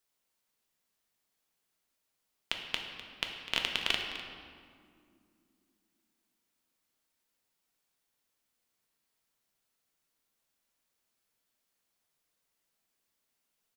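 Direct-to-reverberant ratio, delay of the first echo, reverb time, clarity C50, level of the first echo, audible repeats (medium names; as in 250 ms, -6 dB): 1.5 dB, 252 ms, 2.3 s, 4.0 dB, -15.0 dB, 1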